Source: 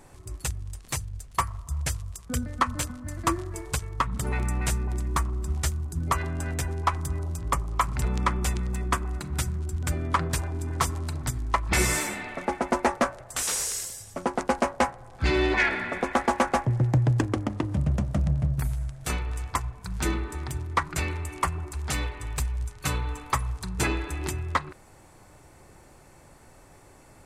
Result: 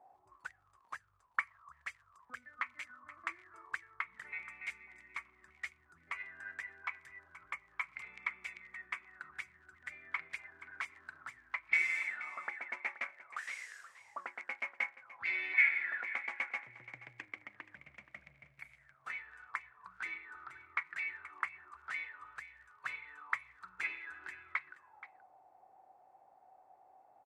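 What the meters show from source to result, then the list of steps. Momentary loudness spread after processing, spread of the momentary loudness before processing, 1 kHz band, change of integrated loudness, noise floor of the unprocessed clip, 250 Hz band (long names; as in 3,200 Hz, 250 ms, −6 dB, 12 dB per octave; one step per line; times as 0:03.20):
17 LU, 8 LU, −18.5 dB, −11.0 dB, −53 dBFS, below −35 dB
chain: envelope filter 710–2,200 Hz, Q 14, up, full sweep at −24 dBFS
single-tap delay 477 ms −16 dB
level +4.5 dB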